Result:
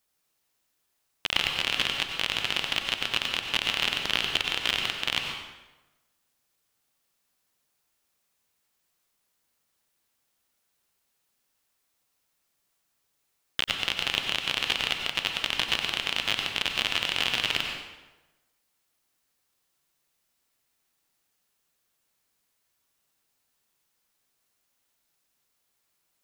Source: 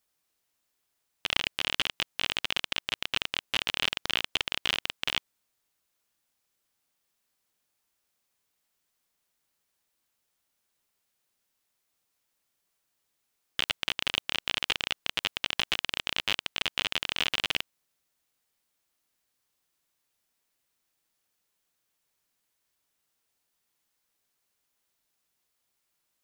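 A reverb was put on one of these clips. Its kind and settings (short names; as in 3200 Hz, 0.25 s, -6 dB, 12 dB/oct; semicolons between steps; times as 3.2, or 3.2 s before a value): plate-style reverb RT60 1.1 s, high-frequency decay 0.75×, pre-delay 80 ms, DRR 3 dB; gain +1.5 dB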